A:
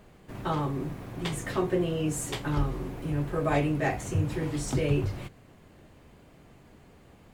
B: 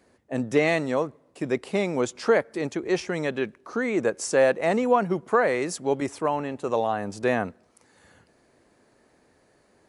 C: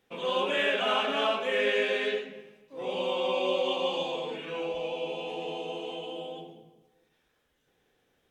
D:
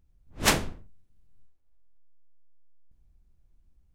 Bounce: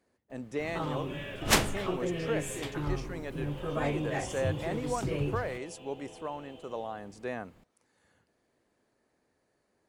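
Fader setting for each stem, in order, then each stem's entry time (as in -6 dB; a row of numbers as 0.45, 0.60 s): -6.0, -13.0, -15.5, -1.5 dB; 0.30, 0.00, 0.60, 1.05 s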